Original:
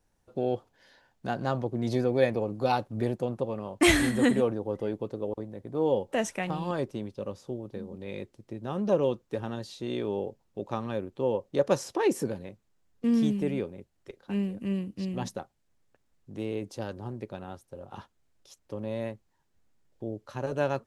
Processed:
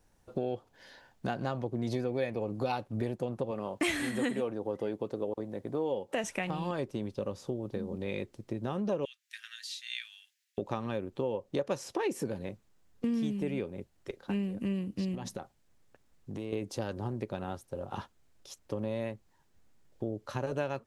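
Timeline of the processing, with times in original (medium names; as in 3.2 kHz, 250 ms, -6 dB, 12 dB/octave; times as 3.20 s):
3.51–6.24 s: high-pass 190 Hz 6 dB/octave
9.05–10.58 s: steep high-pass 1.7 kHz 48 dB/octave
15.15–16.53 s: compression 4:1, threshold -40 dBFS
whole clip: dynamic bell 2.5 kHz, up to +4 dB, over -48 dBFS, Q 2; compression 4:1, threshold -36 dBFS; trim +5 dB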